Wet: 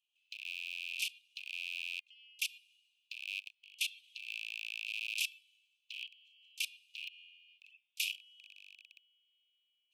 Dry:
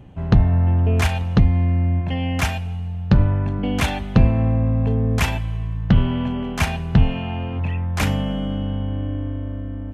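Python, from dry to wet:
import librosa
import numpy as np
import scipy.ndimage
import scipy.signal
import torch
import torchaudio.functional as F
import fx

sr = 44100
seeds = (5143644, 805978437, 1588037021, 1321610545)

y = fx.rattle_buzz(x, sr, strikes_db=-18.0, level_db=-17.0)
y = fx.dynamic_eq(y, sr, hz=6800.0, q=3.1, threshold_db=-50.0, ratio=4.0, max_db=-5)
y = fx.level_steps(y, sr, step_db=20)
y = scipy.signal.sosfilt(scipy.signal.butter(16, 2500.0, 'highpass', fs=sr, output='sos'), y)
y = y * 10.0 ** (-2.5 / 20.0)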